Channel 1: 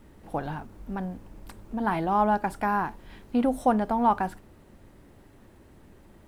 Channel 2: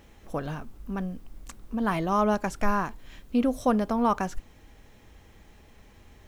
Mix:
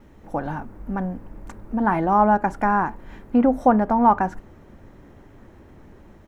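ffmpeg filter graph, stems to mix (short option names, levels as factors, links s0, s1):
-filter_complex "[0:a]lowpass=f=2100:w=0.5412,lowpass=f=2100:w=1.3066,dynaudnorm=f=290:g=3:m=1.5,volume=1.33,asplit=2[s0][s1];[1:a]adelay=3.7,volume=0.501[s2];[s1]apad=whole_len=277036[s3];[s2][s3]sidechaincompress=threshold=0.0794:ratio=8:attack=33:release=287[s4];[s0][s4]amix=inputs=2:normalize=0"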